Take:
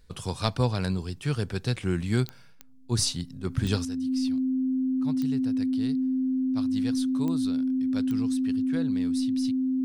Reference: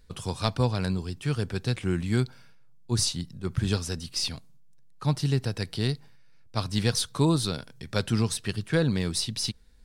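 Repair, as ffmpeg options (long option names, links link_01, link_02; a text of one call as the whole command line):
ffmpeg -i in.wav -af "adeclick=threshold=4,bandreject=frequency=260:width=30,asetnsamples=nb_out_samples=441:pad=0,asendcmd='3.85 volume volume 11.5dB',volume=0dB" out.wav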